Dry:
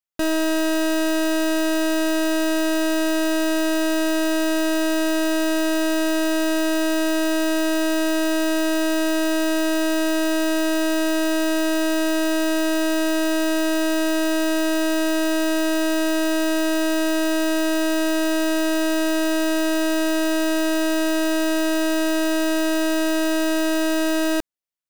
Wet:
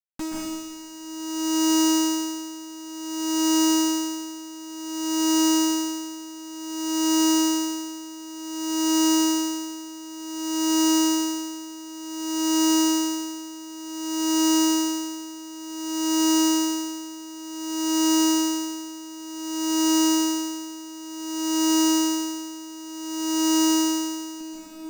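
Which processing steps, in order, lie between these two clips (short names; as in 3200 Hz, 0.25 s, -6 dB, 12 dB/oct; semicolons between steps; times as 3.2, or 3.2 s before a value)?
EQ curve 140 Hz 0 dB, 200 Hz +13 dB, 300 Hz +9 dB, 520 Hz -28 dB, 1300 Hz +1 dB, 2500 Hz -6 dB, 3800 Hz +2 dB, 5400 Hz +6 dB, 8300 Hz +9 dB, 14000 Hz -23 dB; tube stage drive 27 dB, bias 0.4; companded quantiser 4-bit; plate-style reverb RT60 2.6 s, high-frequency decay 0.9×, pre-delay 0.115 s, DRR -9 dB; dB-linear tremolo 0.55 Hz, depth 19 dB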